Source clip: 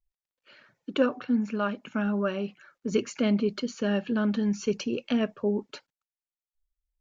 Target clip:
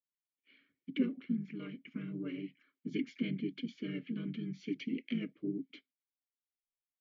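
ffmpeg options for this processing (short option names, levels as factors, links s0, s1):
-filter_complex "[0:a]afreqshift=-13,asplit=3[s0][s1][s2];[s1]asetrate=33038,aresample=44100,atempo=1.33484,volume=0.631[s3];[s2]asetrate=35002,aresample=44100,atempo=1.25992,volume=0.562[s4];[s0][s3][s4]amix=inputs=3:normalize=0,asplit=3[s5][s6][s7];[s5]bandpass=f=270:t=q:w=8,volume=1[s8];[s6]bandpass=f=2290:t=q:w=8,volume=0.501[s9];[s7]bandpass=f=3010:t=q:w=8,volume=0.355[s10];[s8][s9][s10]amix=inputs=3:normalize=0,volume=0.891"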